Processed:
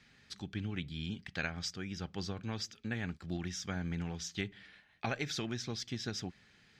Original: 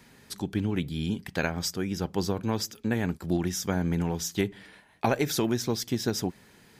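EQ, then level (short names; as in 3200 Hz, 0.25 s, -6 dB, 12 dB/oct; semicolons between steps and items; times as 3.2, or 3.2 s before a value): air absorption 150 m; passive tone stack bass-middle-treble 5-5-5; notch 960 Hz, Q 6; +6.5 dB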